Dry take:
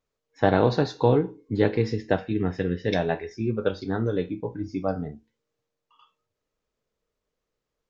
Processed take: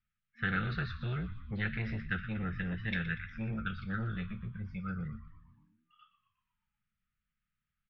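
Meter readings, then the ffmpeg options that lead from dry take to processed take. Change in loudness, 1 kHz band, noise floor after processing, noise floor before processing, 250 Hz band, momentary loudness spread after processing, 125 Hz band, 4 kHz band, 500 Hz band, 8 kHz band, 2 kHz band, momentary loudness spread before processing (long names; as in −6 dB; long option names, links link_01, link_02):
−11.0 dB, −14.0 dB, below −85 dBFS, −84 dBFS, −11.5 dB, 7 LU, −7.5 dB, −9.0 dB, −25.5 dB, can't be measured, −1.5 dB, 9 LU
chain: -filter_complex "[0:a]lowpass=frequency=3000:width=0.5412,lowpass=frequency=3000:width=1.3066,afftfilt=real='re*(1-between(b*sr/4096,230,1200))':imag='im*(1-between(b*sr/4096,230,1200))':win_size=4096:overlap=0.75,asplit=7[link_01][link_02][link_03][link_04][link_05][link_06][link_07];[link_02]adelay=120,afreqshift=-65,volume=-13dB[link_08];[link_03]adelay=240,afreqshift=-130,volume=-18.2dB[link_09];[link_04]adelay=360,afreqshift=-195,volume=-23.4dB[link_10];[link_05]adelay=480,afreqshift=-260,volume=-28.6dB[link_11];[link_06]adelay=600,afreqshift=-325,volume=-33.8dB[link_12];[link_07]adelay=720,afreqshift=-390,volume=-39dB[link_13];[link_01][link_08][link_09][link_10][link_11][link_12][link_13]amix=inputs=7:normalize=0,acrossover=split=560[link_14][link_15];[link_14]asoftclip=type=tanh:threshold=-31.5dB[link_16];[link_16][link_15]amix=inputs=2:normalize=0,volume=-1.5dB"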